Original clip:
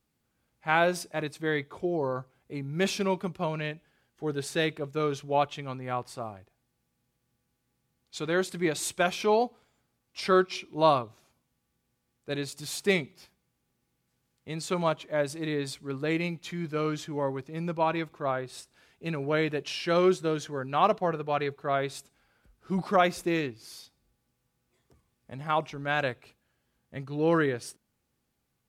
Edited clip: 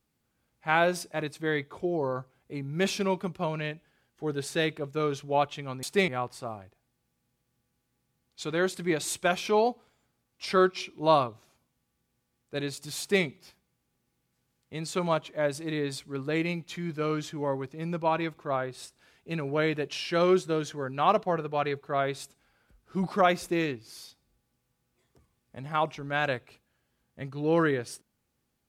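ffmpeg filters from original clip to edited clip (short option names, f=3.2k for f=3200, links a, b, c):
-filter_complex "[0:a]asplit=3[a][b][c];[a]atrim=end=5.832[d];[b]atrim=start=12.738:end=12.992[e];[c]atrim=start=5.828[f];[d][e]acrossfade=d=0.004:c1=hsin:c2=hsin[g];[g][f]acrossfade=d=0.004:c1=hsin:c2=hsin"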